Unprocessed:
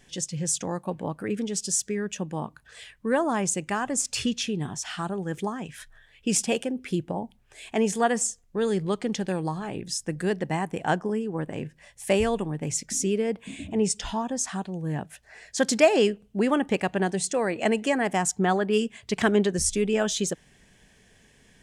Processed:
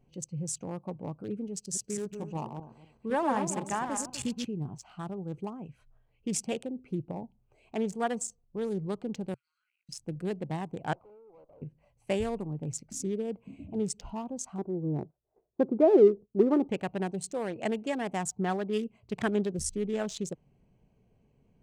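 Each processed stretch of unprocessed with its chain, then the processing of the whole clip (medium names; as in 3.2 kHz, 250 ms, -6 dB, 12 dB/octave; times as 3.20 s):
1.60–4.46 s: backward echo that repeats 125 ms, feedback 43%, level -4.5 dB + dynamic bell 900 Hz, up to +8 dB, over -43 dBFS, Q 2.9
9.34–9.89 s: companding laws mixed up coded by A + rippled Chebyshev high-pass 1.4 kHz, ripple 3 dB + compression, threshold -55 dBFS
10.93–11.62 s: Chebyshev band-pass 550–1200 Hz + valve stage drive 44 dB, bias 0.5
14.58–16.69 s: low-pass 1.2 kHz 24 dB/octave + peaking EQ 370 Hz +14.5 dB 0.66 oct + gate -50 dBFS, range -18 dB
whole clip: local Wiener filter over 25 samples; peaking EQ 130 Hz +6 dB 0.52 oct; trim -7 dB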